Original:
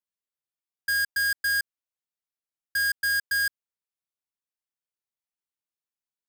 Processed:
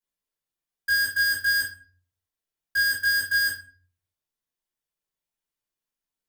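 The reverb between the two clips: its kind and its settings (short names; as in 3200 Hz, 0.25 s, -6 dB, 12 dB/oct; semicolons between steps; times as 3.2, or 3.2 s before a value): shoebox room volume 32 m³, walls mixed, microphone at 1.5 m; gain -4.5 dB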